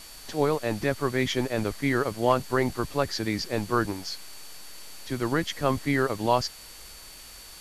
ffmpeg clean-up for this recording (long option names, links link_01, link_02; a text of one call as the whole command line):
ffmpeg -i in.wav -af "bandreject=frequency=4500:width=30,afwtdn=0.0056" out.wav